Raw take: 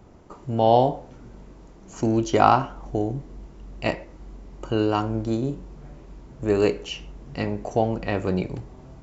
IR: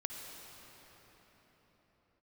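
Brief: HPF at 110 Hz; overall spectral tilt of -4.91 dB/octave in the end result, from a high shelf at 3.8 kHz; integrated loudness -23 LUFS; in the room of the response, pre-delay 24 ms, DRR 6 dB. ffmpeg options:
-filter_complex "[0:a]highpass=110,highshelf=f=3800:g=7.5,asplit=2[s0][s1];[1:a]atrim=start_sample=2205,adelay=24[s2];[s1][s2]afir=irnorm=-1:irlink=0,volume=0.501[s3];[s0][s3]amix=inputs=2:normalize=0,volume=1.12"

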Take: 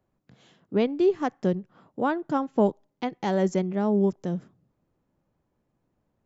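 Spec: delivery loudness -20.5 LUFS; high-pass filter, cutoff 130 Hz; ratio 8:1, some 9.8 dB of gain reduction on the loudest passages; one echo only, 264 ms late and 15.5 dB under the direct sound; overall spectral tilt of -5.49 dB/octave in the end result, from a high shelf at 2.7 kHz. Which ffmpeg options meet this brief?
-af "highpass=130,highshelf=f=2700:g=-7.5,acompressor=threshold=0.0447:ratio=8,aecho=1:1:264:0.168,volume=4.47"

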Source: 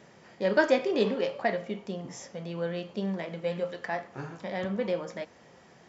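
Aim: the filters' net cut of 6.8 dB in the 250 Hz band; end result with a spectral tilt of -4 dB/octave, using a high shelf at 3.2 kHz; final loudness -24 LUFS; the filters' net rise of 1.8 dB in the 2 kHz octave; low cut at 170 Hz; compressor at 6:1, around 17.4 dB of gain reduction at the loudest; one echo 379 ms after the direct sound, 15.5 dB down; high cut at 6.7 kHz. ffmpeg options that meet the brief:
-af "highpass=170,lowpass=6700,equalizer=f=250:t=o:g=-8,equalizer=f=2000:t=o:g=5,highshelf=f=3200:g=-8.5,acompressor=threshold=0.0126:ratio=6,aecho=1:1:379:0.168,volume=8.41"

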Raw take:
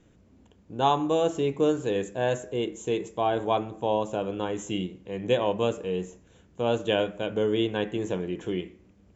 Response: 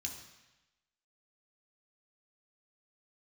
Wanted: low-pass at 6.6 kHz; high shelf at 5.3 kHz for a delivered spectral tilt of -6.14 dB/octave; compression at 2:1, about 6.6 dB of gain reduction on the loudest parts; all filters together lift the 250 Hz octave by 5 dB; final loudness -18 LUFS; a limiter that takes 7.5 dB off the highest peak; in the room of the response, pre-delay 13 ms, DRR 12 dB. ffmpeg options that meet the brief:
-filter_complex "[0:a]lowpass=6600,equalizer=f=250:t=o:g=7,highshelf=f=5300:g=-6.5,acompressor=threshold=0.0398:ratio=2,alimiter=limit=0.0841:level=0:latency=1,asplit=2[s0][s1];[1:a]atrim=start_sample=2205,adelay=13[s2];[s1][s2]afir=irnorm=-1:irlink=0,volume=0.299[s3];[s0][s3]amix=inputs=2:normalize=0,volume=5.31"

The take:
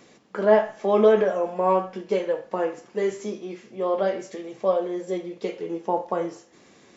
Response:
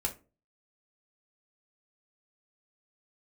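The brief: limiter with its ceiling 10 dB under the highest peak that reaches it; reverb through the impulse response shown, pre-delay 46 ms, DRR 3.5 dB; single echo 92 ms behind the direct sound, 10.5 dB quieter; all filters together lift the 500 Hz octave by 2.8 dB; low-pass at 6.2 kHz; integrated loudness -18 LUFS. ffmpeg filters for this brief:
-filter_complex "[0:a]lowpass=6200,equalizer=f=500:t=o:g=3.5,alimiter=limit=0.224:level=0:latency=1,aecho=1:1:92:0.299,asplit=2[s0][s1];[1:a]atrim=start_sample=2205,adelay=46[s2];[s1][s2]afir=irnorm=-1:irlink=0,volume=0.473[s3];[s0][s3]amix=inputs=2:normalize=0,volume=1.58"

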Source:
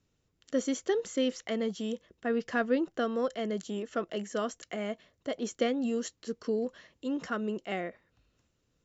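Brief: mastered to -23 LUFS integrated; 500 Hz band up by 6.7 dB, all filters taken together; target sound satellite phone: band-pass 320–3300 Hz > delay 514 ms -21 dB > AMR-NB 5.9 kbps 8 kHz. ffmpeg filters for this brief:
-af "highpass=320,lowpass=3300,equalizer=f=500:t=o:g=8.5,aecho=1:1:514:0.0891,volume=2.24" -ar 8000 -c:a libopencore_amrnb -b:a 5900

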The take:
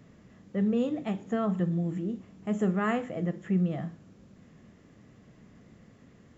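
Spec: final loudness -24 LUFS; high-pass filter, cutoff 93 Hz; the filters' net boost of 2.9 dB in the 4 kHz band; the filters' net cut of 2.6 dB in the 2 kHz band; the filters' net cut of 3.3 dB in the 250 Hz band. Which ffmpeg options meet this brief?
-af "highpass=93,equalizer=f=250:t=o:g=-4.5,equalizer=f=2000:t=o:g=-4.5,equalizer=f=4000:t=o:g=7,volume=2.82"

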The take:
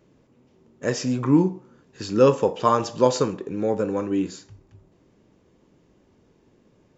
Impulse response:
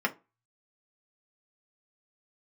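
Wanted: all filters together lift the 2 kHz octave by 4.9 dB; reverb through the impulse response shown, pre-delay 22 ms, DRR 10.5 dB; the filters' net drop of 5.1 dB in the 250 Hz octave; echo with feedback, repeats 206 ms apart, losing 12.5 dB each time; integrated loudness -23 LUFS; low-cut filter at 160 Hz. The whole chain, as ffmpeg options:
-filter_complex "[0:a]highpass=160,equalizer=f=250:t=o:g=-6,equalizer=f=2000:t=o:g=6.5,aecho=1:1:206|412|618:0.237|0.0569|0.0137,asplit=2[s0][s1];[1:a]atrim=start_sample=2205,adelay=22[s2];[s1][s2]afir=irnorm=-1:irlink=0,volume=0.0944[s3];[s0][s3]amix=inputs=2:normalize=0,volume=1.06"

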